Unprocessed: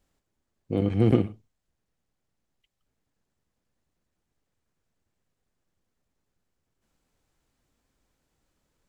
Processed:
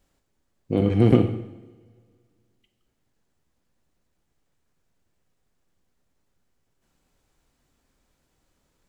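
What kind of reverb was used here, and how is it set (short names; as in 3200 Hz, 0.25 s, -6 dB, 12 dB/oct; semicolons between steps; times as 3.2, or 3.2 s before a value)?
two-slope reverb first 0.88 s, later 2.4 s, from -20 dB, DRR 7.5 dB; gain +4 dB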